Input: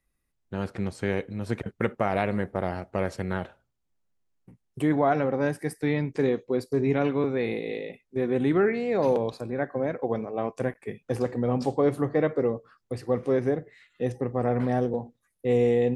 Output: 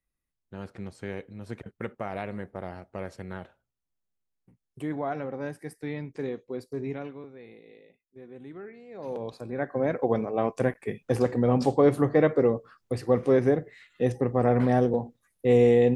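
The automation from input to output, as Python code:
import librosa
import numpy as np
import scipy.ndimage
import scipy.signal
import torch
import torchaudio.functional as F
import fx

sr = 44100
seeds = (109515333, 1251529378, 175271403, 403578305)

y = fx.gain(x, sr, db=fx.line((6.87, -8.5), (7.31, -20.0), (8.89, -20.0), (9.23, -7.0), (9.94, 3.0)))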